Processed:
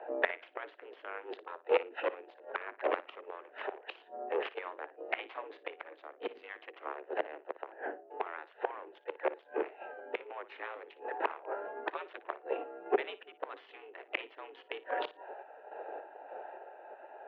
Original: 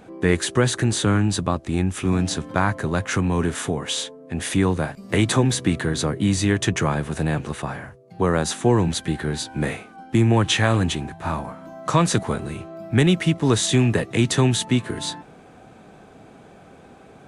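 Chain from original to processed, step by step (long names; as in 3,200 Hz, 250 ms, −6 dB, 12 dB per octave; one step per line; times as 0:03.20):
adaptive Wiener filter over 41 samples
notch filter 500 Hz, Q 16
gate on every frequency bin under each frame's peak −10 dB weak
in parallel at −3 dB: speech leveller within 5 dB 0.5 s
on the sum: tape wow and flutter 21 cents
gate with flip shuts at −20 dBFS, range −26 dB
tube saturation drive 30 dB, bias 0.65
sample-and-hold tremolo
on a send: flutter between parallel walls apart 9.9 metres, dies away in 0.21 s
on the sum: single-sideband voice off tune +77 Hz 290–2,900 Hz
level +13 dB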